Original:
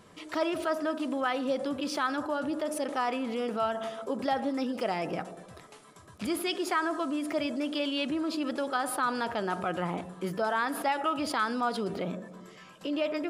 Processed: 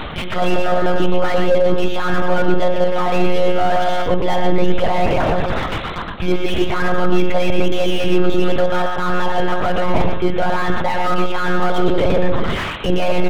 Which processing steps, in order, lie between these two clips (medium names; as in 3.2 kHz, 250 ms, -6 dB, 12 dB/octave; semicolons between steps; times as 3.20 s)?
treble shelf 2.5 kHz +9 dB; hum notches 60/120/180 Hz; reverse; compression 10:1, threshold -41 dBFS, peak gain reduction 19.5 dB; reverse; hard clipper -36 dBFS, distortion -23 dB; monotone LPC vocoder at 8 kHz 180 Hz; feedback comb 54 Hz, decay 0.44 s, harmonics all, mix 40%; delay 120 ms -10 dB; on a send at -19 dB: reverberation RT60 0.50 s, pre-delay 6 ms; on the sum: loudness maximiser +33 dB; slew-rate limiter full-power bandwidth 170 Hz; trim -1 dB